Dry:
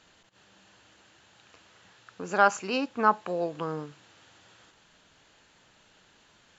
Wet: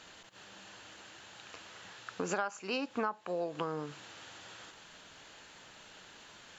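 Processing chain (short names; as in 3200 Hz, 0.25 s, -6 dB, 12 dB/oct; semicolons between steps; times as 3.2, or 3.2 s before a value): low shelf 260 Hz -6 dB; compressor 12:1, threshold -38 dBFS, peak gain reduction 23.5 dB; gain +7 dB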